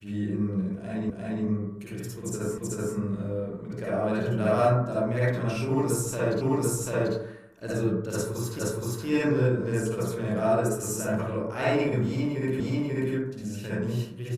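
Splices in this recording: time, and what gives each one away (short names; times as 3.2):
1.1 repeat of the last 0.35 s
2.58 repeat of the last 0.38 s
6.41 repeat of the last 0.74 s
8.59 repeat of the last 0.47 s
12.6 repeat of the last 0.54 s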